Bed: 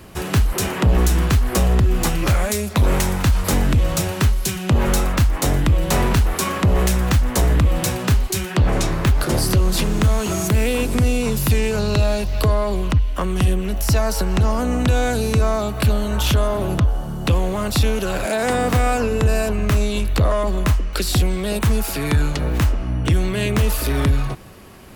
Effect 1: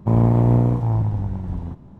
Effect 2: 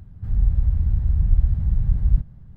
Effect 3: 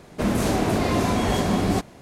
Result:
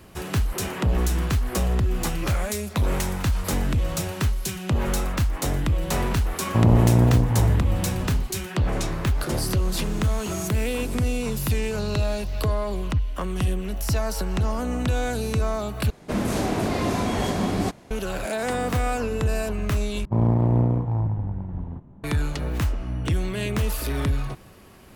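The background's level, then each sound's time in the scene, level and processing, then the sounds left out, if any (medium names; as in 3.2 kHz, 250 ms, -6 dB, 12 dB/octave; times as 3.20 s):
bed -6.5 dB
6.48 s: add 1 -1.5 dB
15.90 s: replace with 3 -2.5 dB
20.05 s: replace with 1 -4 dB + local Wiener filter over 9 samples
not used: 2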